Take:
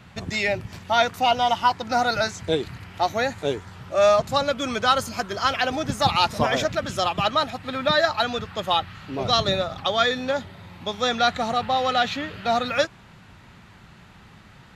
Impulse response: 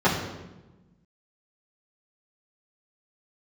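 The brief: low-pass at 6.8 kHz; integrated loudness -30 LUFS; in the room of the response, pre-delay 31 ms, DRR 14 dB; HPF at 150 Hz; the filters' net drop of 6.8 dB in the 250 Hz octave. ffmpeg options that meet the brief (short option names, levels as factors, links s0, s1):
-filter_complex "[0:a]highpass=150,lowpass=6800,equalizer=f=250:t=o:g=-7.5,asplit=2[s0][s1];[1:a]atrim=start_sample=2205,adelay=31[s2];[s1][s2]afir=irnorm=-1:irlink=0,volume=0.0237[s3];[s0][s3]amix=inputs=2:normalize=0,volume=0.473"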